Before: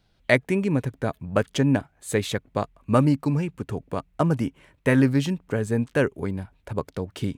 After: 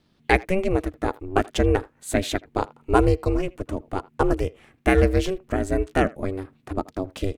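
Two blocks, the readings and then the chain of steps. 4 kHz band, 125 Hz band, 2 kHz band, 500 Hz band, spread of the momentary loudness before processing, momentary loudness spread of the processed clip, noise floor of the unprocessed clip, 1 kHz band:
+1.0 dB, -2.5 dB, +0.5 dB, +2.5 dB, 11 LU, 12 LU, -65 dBFS, +5.5 dB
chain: ring modulator 190 Hz; speakerphone echo 80 ms, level -22 dB; gain +4 dB

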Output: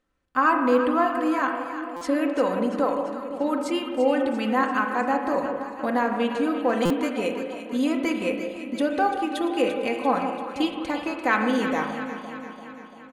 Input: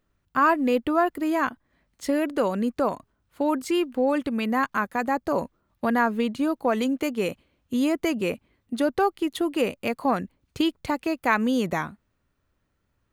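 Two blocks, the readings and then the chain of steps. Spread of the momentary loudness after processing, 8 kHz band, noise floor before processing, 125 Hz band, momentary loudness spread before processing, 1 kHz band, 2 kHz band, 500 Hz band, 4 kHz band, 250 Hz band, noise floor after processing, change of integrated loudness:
9 LU, -2.0 dB, -74 dBFS, -1.5 dB, 8 LU, +2.0 dB, +1.5 dB, +1.5 dB, +0.5 dB, +0.5 dB, -43 dBFS, +0.5 dB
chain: LPF 11000 Hz 24 dB/oct; tone controls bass -7 dB, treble -2 dB; comb 3.9 ms, depth 53%; on a send: echo with dull and thin repeats by turns 0.171 s, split 950 Hz, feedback 77%, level -8 dB; on the sum: spring tank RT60 1.3 s, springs 32/38 ms, chirp 65 ms, DRR 4.5 dB; stuck buffer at 1.96/6.85, samples 256, times 8; gain -1.5 dB

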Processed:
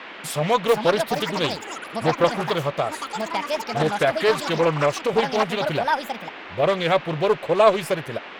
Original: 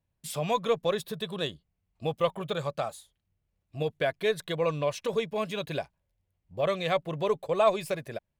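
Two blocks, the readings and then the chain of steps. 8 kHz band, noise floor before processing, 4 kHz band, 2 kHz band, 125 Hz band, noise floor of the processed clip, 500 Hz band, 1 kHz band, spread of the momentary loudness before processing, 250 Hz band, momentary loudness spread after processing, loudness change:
+8.5 dB, -81 dBFS, +9.0 dB, +11.0 dB, +7.5 dB, -38 dBFS, +8.0 dB, +10.5 dB, 10 LU, +9.5 dB, 8 LU, +8.0 dB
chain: echoes that change speed 0.506 s, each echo +6 st, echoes 3, each echo -6 dB; band noise 210–2800 Hz -46 dBFS; Doppler distortion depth 0.32 ms; gain +7.5 dB

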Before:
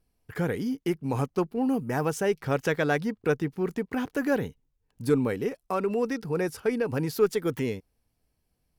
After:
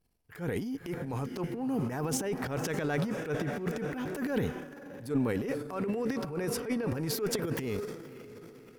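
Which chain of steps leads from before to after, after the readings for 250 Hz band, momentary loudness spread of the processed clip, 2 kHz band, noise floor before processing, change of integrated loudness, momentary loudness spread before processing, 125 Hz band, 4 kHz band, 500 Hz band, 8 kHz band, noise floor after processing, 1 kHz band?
-4.0 dB, 11 LU, -6.0 dB, -76 dBFS, -5.0 dB, 6 LU, -3.0 dB, 0.0 dB, -7.0 dB, +3.0 dB, -53 dBFS, -6.5 dB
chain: diffused feedback echo 0.557 s, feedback 47%, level -14.5 dB; transient shaper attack -10 dB, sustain +11 dB; gain -5.5 dB

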